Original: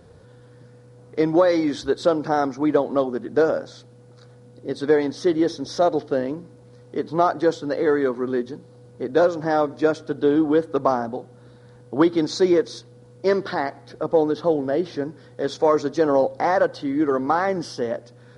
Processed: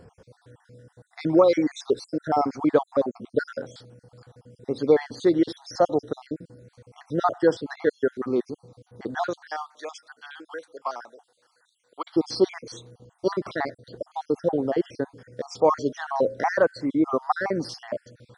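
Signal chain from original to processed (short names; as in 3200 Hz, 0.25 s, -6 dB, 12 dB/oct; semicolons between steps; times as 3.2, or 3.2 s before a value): random spectral dropouts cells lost 53%; 9.36–12.14 Bessel high-pass 1600 Hz, order 2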